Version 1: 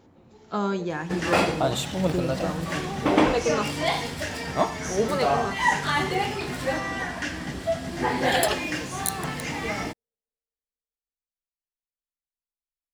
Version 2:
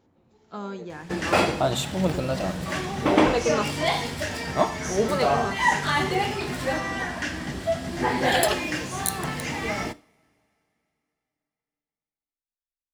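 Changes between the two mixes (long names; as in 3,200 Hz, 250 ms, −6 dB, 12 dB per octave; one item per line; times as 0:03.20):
speech −8.5 dB
second sound: send on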